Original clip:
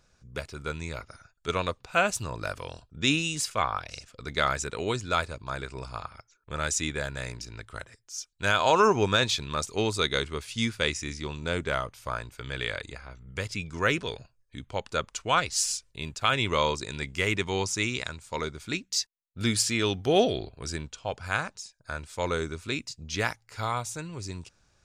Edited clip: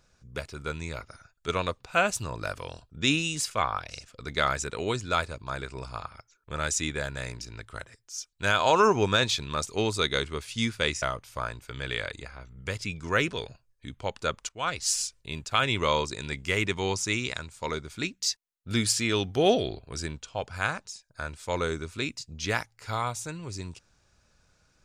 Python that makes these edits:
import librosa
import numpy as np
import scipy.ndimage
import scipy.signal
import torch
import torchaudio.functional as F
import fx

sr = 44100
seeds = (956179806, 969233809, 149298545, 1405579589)

y = fx.edit(x, sr, fx.cut(start_s=11.02, length_s=0.7),
    fx.fade_in_from(start_s=15.19, length_s=0.37, floor_db=-20.5), tone=tone)